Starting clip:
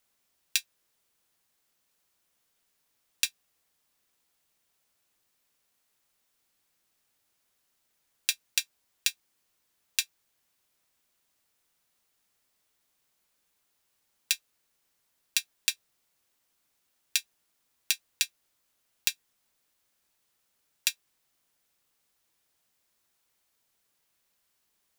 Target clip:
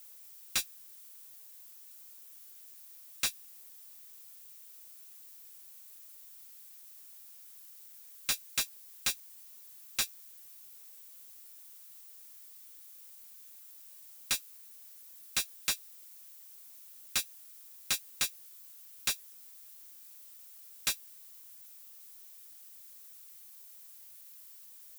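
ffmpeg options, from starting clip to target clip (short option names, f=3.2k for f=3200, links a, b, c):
-af "highpass=190,aemphasis=mode=production:type=75kf,asoftclip=type=tanh:threshold=-32dB,volume=6.5dB"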